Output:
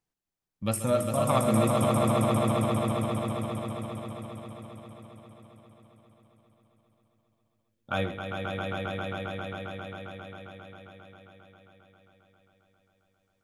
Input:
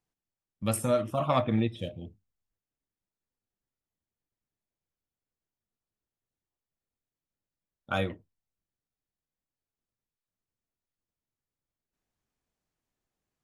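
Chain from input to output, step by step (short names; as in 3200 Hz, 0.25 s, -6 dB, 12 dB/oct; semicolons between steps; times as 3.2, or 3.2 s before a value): swelling echo 0.134 s, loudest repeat 5, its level -5.5 dB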